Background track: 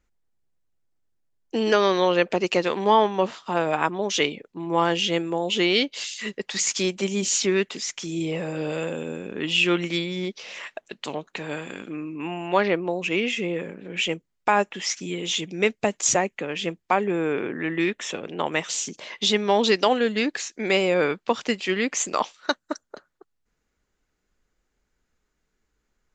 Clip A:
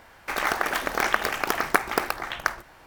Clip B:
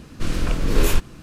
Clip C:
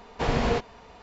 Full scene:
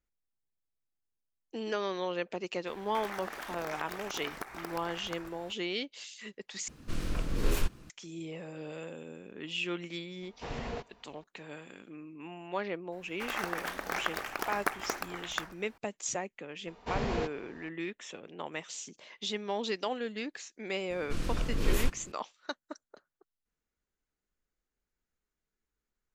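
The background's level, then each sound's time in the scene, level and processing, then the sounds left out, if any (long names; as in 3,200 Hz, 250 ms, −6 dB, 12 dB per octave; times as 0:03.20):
background track −14 dB
0:02.67: mix in A −3.5 dB + downward compressor 2.5 to 1, threshold −40 dBFS
0:06.68: overwrite with B −11 dB + gap after every zero crossing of 0.058 ms
0:10.22: mix in C −14 dB
0:12.92: mix in A −10.5 dB
0:16.67: mix in C −8.5 dB
0:20.90: mix in B −10.5 dB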